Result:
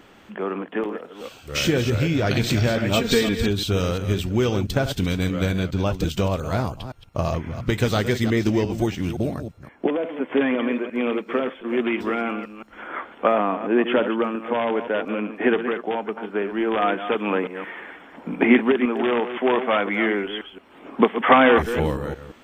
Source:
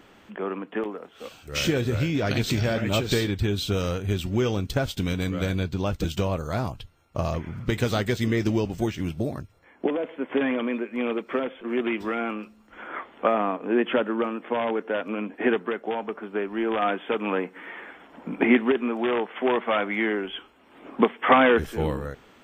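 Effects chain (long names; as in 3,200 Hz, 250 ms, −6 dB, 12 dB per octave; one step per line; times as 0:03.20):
delay that plays each chunk backwards 173 ms, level −10 dB
0:02.96–0:03.48: comb filter 4.3 ms, depth 69%
level +3 dB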